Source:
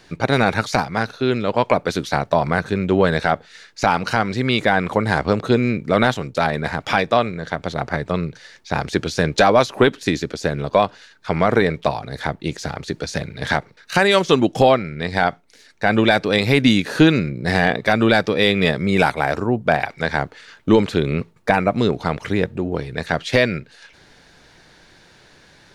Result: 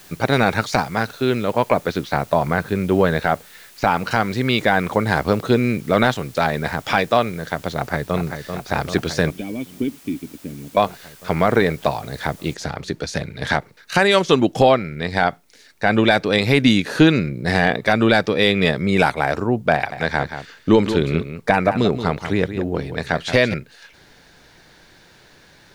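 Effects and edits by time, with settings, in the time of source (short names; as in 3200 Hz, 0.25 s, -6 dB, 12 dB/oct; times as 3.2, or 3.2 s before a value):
1.45–4.11 air absorption 140 m
7.75–8.21 echo throw 0.39 s, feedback 80%, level -7.5 dB
9.3–10.77 vocal tract filter i
12.54 noise floor step -47 dB -67 dB
19.74–23.54 echo 0.177 s -10 dB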